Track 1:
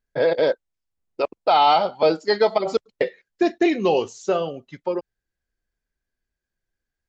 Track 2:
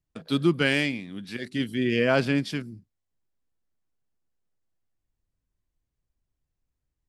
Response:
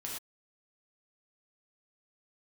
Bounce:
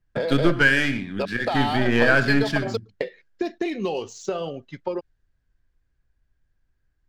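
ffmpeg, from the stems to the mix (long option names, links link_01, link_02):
-filter_complex "[0:a]acompressor=threshold=-23dB:ratio=16,adynamicequalizer=threshold=0.00794:dfrequency=2400:dqfactor=0.7:tfrequency=2400:tqfactor=0.7:attack=5:release=100:ratio=0.375:range=2.5:mode=boostabove:tftype=highshelf,volume=0dB[link_01];[1:a]aeval=exprs='0.398*(cos(1*acos(clip(val(0)/0.398,-1,1)))-cos(1*PI/2))+0.0398*(cos(6*acos(clip(val(0)/0.398,-1,1)))-cos(6*PI/2))':channel_layout=same,equalizer=frequency=1600:width=3.9:gain=14,acompressor=threshold=-21dB:ratio=2,volume=1.5dB,asplit=2[link_02][link_03];[link_03]volume=-6.5dB[link_04];[2:a]atrim=start_sample=2205[link_05];[link_04][link_05]afir=irnorm=-1:irlink=0[link_06];[link_01][link_02][link_06]amix=inputs=3:normalize=0,lowshelf=frequency=88:gain=9,adynamicsmooth=sensitivity=6.5:basefreq=6100"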